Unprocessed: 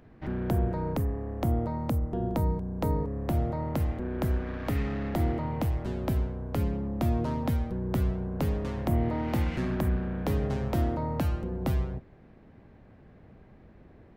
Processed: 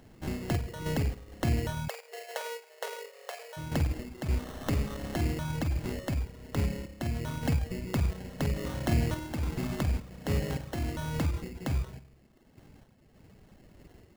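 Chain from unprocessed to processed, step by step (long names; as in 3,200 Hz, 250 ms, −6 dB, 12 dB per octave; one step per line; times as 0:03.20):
sample-and-hold tremolo
convolution reverb RT60 0.90 s, pre-delay 45 ms, DRR 4.5 dB
reverb reduction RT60 0.84 s
sample-rate reduction 2,400 Hz, jitter 0%
0:01.88–0:03.57: linear-phase brick-wall high-pass 400 Hz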